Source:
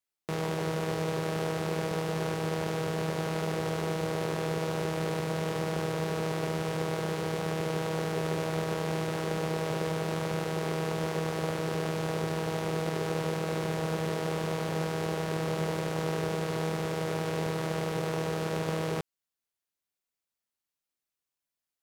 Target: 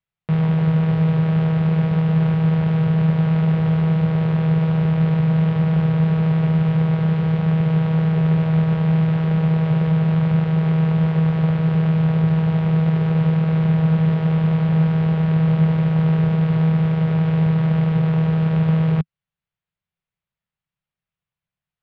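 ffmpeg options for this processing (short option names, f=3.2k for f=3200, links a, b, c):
-af "lowpass=f=3.3k:w=0.5412,lowpass=f=3.3k:w=1.3066,lowshelf=f=210:t=q:w=3:g=9,volume=3.5dB"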